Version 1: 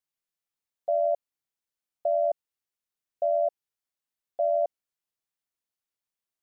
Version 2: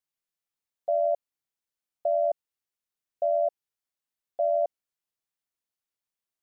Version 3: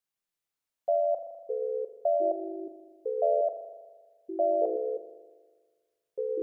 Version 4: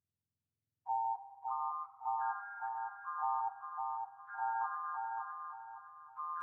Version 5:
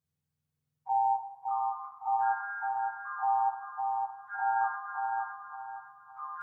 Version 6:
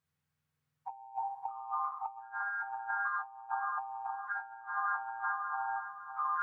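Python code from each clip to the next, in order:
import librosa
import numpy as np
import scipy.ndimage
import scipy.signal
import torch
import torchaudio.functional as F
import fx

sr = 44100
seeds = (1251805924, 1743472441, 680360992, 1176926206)

y1 = x
y2 = fx.echo_pitch(y1, sr, ms=317, semitones=-5, count=2, db_per_echo=-6.0)
y2 = fx.rev_spring(y2, sr, rt60_s=1.5, pass_ms=(40,), chirp_ms=65, drr_db=6.0)
y3 = fx.octave_mirror(y2, sr, pivot_hz=730.0)
y3 = fx.echo_feedback(y3, sr, ms=561, feedback_pct=33, wet_db=-4.5)
y3 = F.gain(torch.from_numpy(y3), -8.5).numpy()
y4 = fx.rev_fdn(y3, sr, rt60_s=0.46, lf_ratio=1.2, hf_ratio=0.55, size_ms=37.0, drr_db=-3.5)
y5 = fx.peak_eq(y4, sr, hz=1500.0, db=10.5, octaves=2.2)
y5 = fx.over_compress(y5, sr, threshold_db=-30.0, ratio=-0.5)
y5 = F.gain(torch.from_numpy(y5), -6.5).numpy()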